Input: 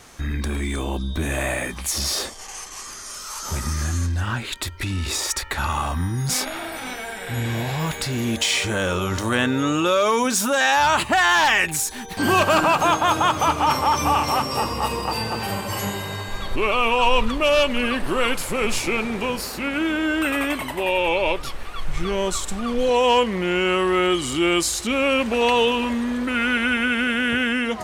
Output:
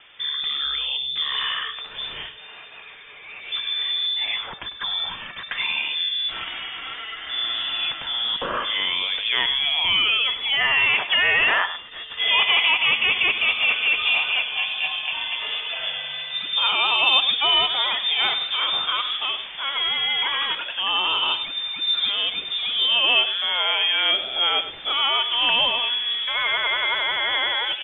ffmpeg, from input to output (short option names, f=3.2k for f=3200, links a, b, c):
-filter_complex "[0:a]lowpass=f=3.1k:t=q:w=0.5098,lowpass=f=3.1k:t=q:w=0.6013,lowpass=f=3.1k:t=q:w=0.9,lowpass=f=3.1k:t=q:w=2.563,afreqshift=-3600,asplit=2[a][b];[b]adelay=99.13,volume=-12dB,highshelf=f=4k:g=-2.23[c];[a][c]amix=inputs=2:normalize=0,flanger=delay=0.7:depth=2.3:regen=88:speed=1.4:shape=triangular,volume=3dB"